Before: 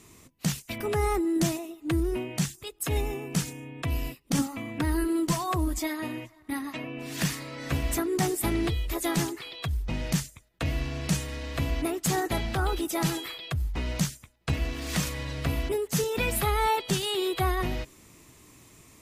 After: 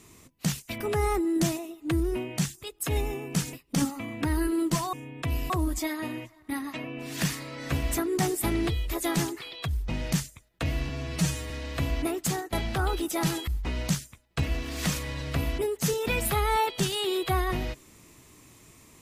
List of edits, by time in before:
0:03.53–0:04.10: move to 0:05.50
0:10.89–0:11.30: time-stretch 1.5×
0:12.03–0:12.32: fade out, to −19 dB
0:13.27–0:13.58: remove

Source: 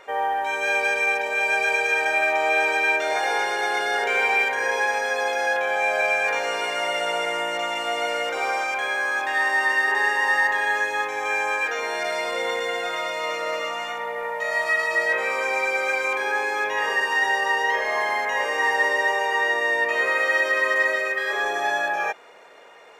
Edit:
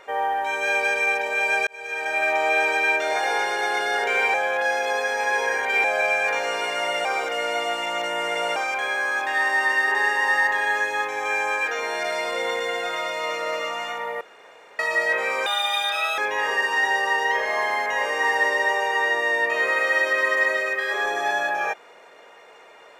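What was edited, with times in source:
0:01.67–0:02.31: fade in
0:04.34–0:05.84: reverse
0:07.05–0:08.56: reverse
0:14.21–0:14.79: fill with room tone
0:15.46–0:16.57: play speed 154%

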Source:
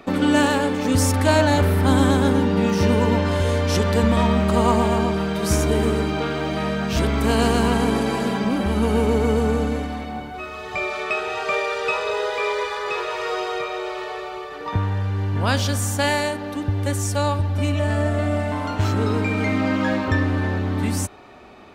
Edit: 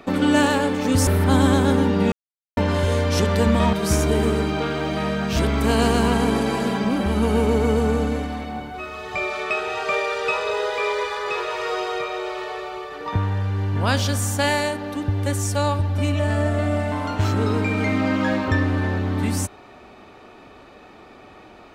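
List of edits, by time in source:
0:01.07–0:01.64: remove
0:02.69–0:03.14: silence
0:04.30–0:05.33: remove

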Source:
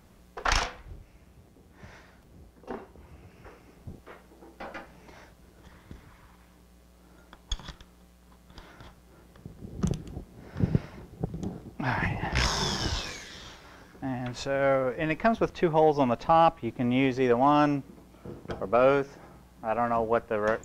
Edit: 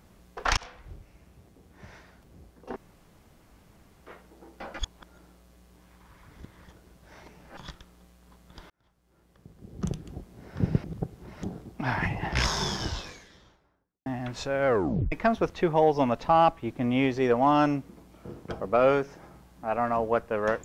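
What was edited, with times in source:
0:00.57–0:00.86: fade in
0:02.76–0:04.02: fill with room tone
0:04.79–0:07.57: reverse
0:08.70–0:10.29: fade in linear
0:10.84–0:11.43: reverse
0:12.48–0:14.06: fade out and dull
0:14.67: tape stop 0.45 s

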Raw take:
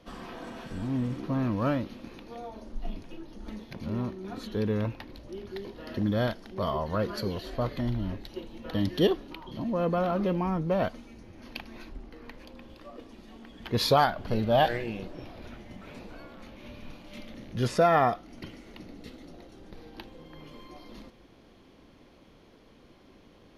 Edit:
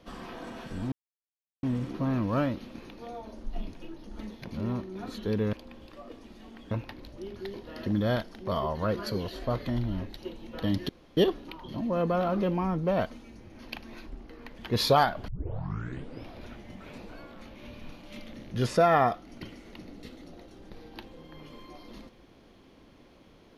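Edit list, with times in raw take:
0:00.92: splice in silence 0.71 s
0:09.00: splice in room tone 0.28 s
0:12.41–0:13.59: move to 0:04.82
0:14.29: tape start 0.99 s

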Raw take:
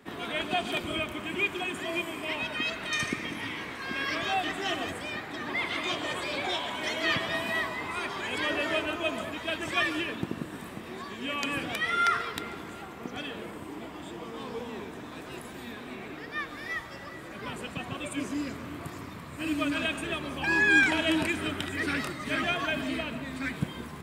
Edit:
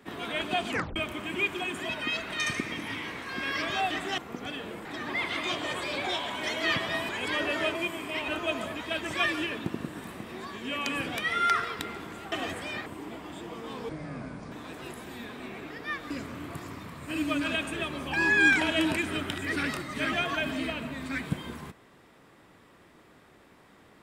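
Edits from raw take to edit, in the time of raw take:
0:00.68: tape stop 0.28 s
0:01.89–0:02.42: move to 0:08.85
0:04.71–0:05.25: swap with 0:12.89–0:13.56
0:07.49–0:08.19: remove
0:14.59–0:14.99: play speed 64%
0:16.58–0:18.41: remove

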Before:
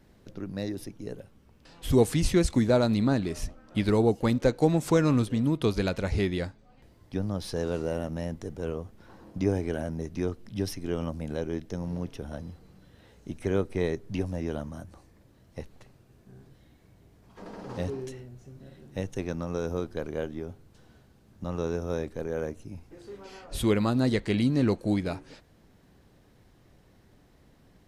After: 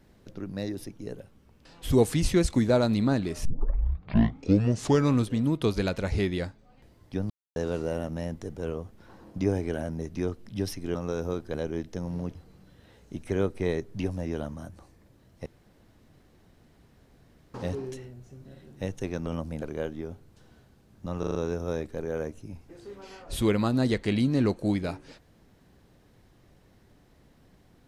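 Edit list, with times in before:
0:03.45: tape start 1.71 s
0:07.30–0:07.56: silence
0:10.95–0:11.31: swap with 0:19.41–0:20.00
0:12.12–0:12.50: remove
0:15.61–0:17.69: fill with room tone
0:21.57: stutter 0.04 s, 5 plays

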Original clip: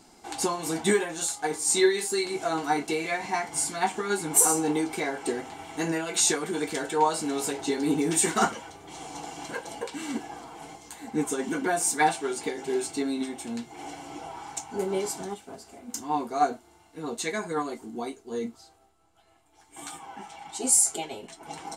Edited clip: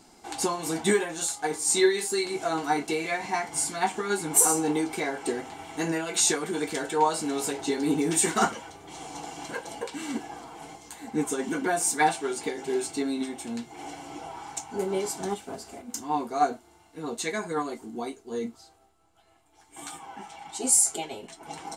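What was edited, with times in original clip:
0:15.23–0:15.82: clip gain +5 dB

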